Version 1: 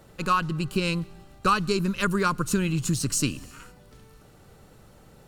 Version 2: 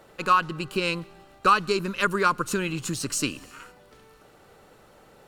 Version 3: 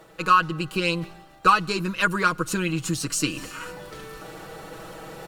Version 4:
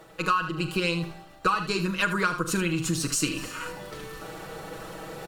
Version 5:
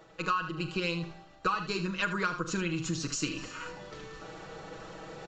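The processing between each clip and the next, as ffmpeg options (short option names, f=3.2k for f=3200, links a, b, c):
-af "bass=f=250:g=-13,treble=f=4k:g=-6,volume=3.5dB"
-af "aecho=1:1:6.2:0.69,areverse,acompressor=mode=upward:threshold=-27dB:ratio=2.5,areverse,acrusher=bits=11:mix=0:aa=0.000001"
-filter_complex "[0:a]asplit=2[a][b];[b]aecho=0:1:41|78:0.237|0.266[c];[a][c]amix=inputs=2:normalize=0,acompressor=threshold=-21dB:ratio=5"
-af "aresample=16000,aresample=44100,volume=-5.5dB"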